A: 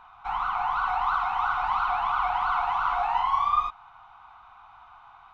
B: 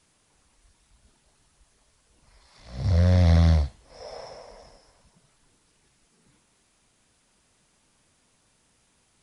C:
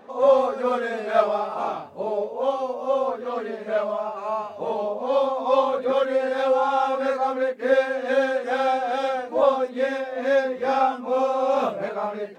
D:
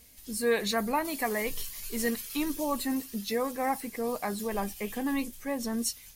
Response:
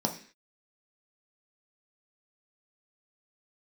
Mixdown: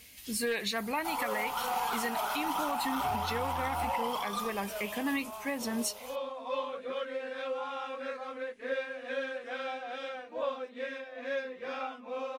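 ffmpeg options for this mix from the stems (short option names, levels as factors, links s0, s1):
-filter_complex "[0:a]highshelf=f=3800:g=-10,volume=16.8,asoftclip=hard,volume=0.0596,adelay=800,volume=0.335,asplit=2[s0][s1];[s1]volume=0.708[s2];[1:a]asoftclip=type=tanh:threshold=0.0708,adelay=250,volume=0.299[s3];[2:a]bandreject=f=810:w=12,adelay=1000,volume=0.168[s4];[3:a]highpass=58,asoftclip=type=hard:threshold=0.112,volume=1.06[s5];[4:a]atrim=start_sample=2205[s6];[s2][s6]afir=irnorm=-1:irlink=0[s7];[s0][s3][s4][s5][s7]amix=inputs=5:normalize=0,equalizer=f=2600:w=0.98:g=10,alimiter=limit=0.075:level=0:latency=1:release=395"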